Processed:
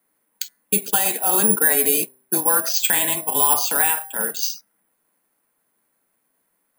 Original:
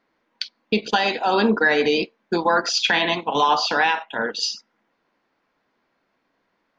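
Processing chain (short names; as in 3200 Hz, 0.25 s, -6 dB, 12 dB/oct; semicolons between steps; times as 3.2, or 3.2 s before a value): de-hum 134.6 Hz, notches 15; careless resampling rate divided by 4×, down none, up zero stuff; frequency shift -16 Hz; gain -5 dB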